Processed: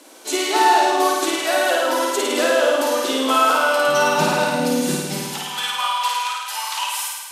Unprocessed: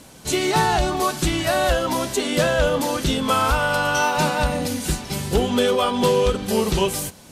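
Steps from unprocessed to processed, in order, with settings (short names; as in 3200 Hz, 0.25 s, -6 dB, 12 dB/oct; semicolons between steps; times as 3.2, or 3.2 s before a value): elliptic high-pass 290 Hz, stop band 70 dB, from 3.87 s 160 Hz, from 5.21 s 880 Hz; flutter echo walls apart 9.1 m, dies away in 1.3 s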